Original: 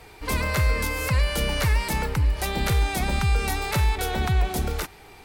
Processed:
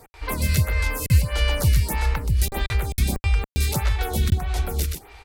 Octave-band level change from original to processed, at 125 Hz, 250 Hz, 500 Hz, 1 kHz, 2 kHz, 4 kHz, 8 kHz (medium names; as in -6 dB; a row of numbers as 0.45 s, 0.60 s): +3.0 dB, 0.0 dB, -2.5 dB, -4.0 dB, -2.5 dB, -0.5 dB, +2.5 dB